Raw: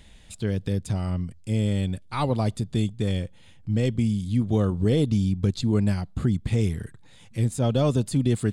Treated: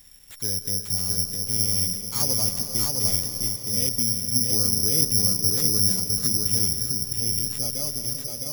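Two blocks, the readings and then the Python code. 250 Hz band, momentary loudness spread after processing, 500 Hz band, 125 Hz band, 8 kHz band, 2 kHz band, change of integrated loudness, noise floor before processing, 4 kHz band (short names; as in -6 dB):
-9.0 dB, 7 LU, -9.0 dB, -9.0 dB, +21.5 dB, -5.0 dB, +4.0 dB, -50 dBFS, +14.5 dB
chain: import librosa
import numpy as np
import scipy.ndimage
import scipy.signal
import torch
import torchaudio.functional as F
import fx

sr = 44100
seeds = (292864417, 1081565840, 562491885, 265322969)

p1 = fx.fade_out_tail(x, sr, length_s=1.43)
p2 = fx.doubler(p1, sr, ms=12.0, db=-13)
p3 = p2 + fx.echo_single(p2, sr, ms=660, db=-3.5, dry=0)
p4 = fx.rev_freeverb(p3, sr, rt60_s=3.9, hf_ratio=0.65, predelay_ms=120, drr_db=7.0)
p5 = (np.kron(p4[::8], np.eye(8)[0]) * 8)[:len(p4)]
y = p5 * 10.0 ** (-10.5 / 20.0)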